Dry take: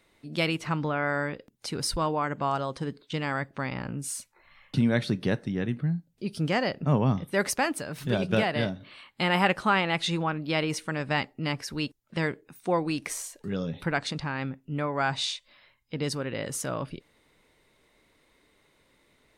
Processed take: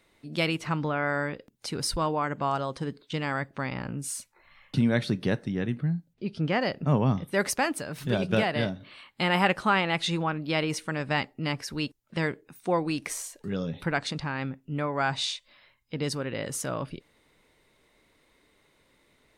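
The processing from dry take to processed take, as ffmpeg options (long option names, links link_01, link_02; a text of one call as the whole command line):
ffmpeg -i in.wav -filter_complex "[0:a]asplit=3[link_01][link_02][link_03];[link_01]afade=type=out:start_time=6.13:duration=0.02[link_04];[link_02]lowpass=3600,afade=type=in:start_time=6.13:duration=0.02,afade=type=out:start_time=6.6:duration=0.02[link_05];[link_03]afade=type=in:start_time=6.6:duration=0.02[link_06];[link_04][link_05][link_06]amix=inputs=3:normalize=0" out.wav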